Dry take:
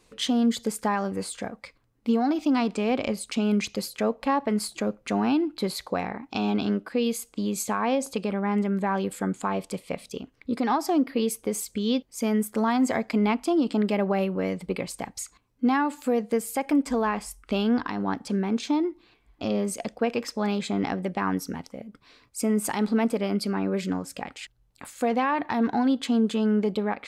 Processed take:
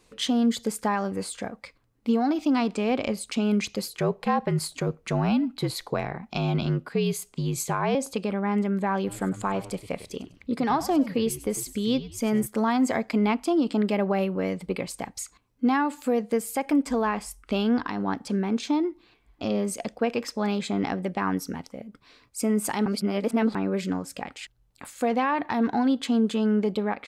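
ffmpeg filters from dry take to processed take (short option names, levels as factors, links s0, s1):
-filter_complex "[0:a]asettb=1/sr,asplit=3[s0][s1][s2];[s0]atrim=end=3.884[s3];[s1]atrim=start=3.88:end=7.95,asetpts=PTS-STARTPTS,afade=t=in:d=0.004:c=qsin,afade=t=out:st=4.066:d=0.004:c=qsin,afreqshift=-53[s4];[s2]atrim=start=7.946[s5];[s3][s4]acrossfade=d=0.004:c1=hsin:c2=qsin[s6];[s6][s5]acrossfade=d=0.004:c1=qsin:c2=hsin,asplit=3[s7][s8][s9];[s7]afade=t=out:st=9.06:d=0.02[s10];[s8]asplit=4[s11][s12][s13][s14];[s12]adelay=99,afreqshift=-82,volume=0.178[s15];[s13]adelay=198,afreqshift=-164,volume=0.0661[s16];[s14]adelay=297,afreqshift=-246,volume=0.0243[s17];[s11][s15][s16][s17]amix=inputs=4:normalize=0,afade=t=in:st=9.06:d=0.02,afade=t=out:st=12.45:d=0.02[s18];[s9]afade=t=in:st=12.45:d=0.02[s19];[s10][s18][s19]amix=inputs=3:normalize=0,asplit=3[s20][s21][s22];[s20]atrim=end=22.862[s23];[s21]atrim=start=22.858:end=23.552,asetpts=PTS-STARTPTS,areverse[s24];[s22]atrim=start=23.548[s25];[s23][s24]acrossfade=d=0.004:c1=hsin:c2=hsin[s26];[s26][s25]acrossfade=d=0.004:c1=hsin:c2=hsin"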